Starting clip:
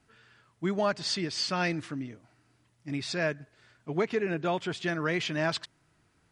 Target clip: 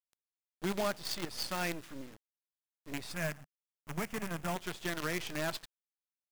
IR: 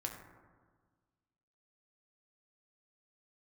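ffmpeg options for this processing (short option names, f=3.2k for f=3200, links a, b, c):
-filter_complex "[0:a]asplit=2[a][b];[1:a]atrim=start_sample=2205,asetrate=83790,aresample=44100[c];[b][c]afir=irnorm=-1:irlink=0,volume=-14dB[d];[a][d]amix=inputs=2:normalize=0,acrusher=bits=5:dc=4:mix=0:aa=0.000001,asoftclip=type=hard:threshold=-21dB,asettb=1/sr,asplit=3[e][f][g];[e]atrim=end=3.124[h];[f]atrim=start=3.12:end=4.56,asetpts=PTS-STARTPTS,afade=t=in:d=0.004:c=qsin,afade=t=out:st=1.436:d=0.004:c=qsin,equalizer=f=160:t=o:w=0.67:g=5,equalizer=f=400:t=o:w=0.67:g=-10,equalizer=f=4k:t=o:w=0.67:g=-9[i];[g]atrim=start=4.556[j];[h][i]acrossfade=d=0.004:c1=hsin:c2=qsin[k];[k][j]acrossfade=d=0.004:c1=qsin:c2=hsin,volume=-5.5dB"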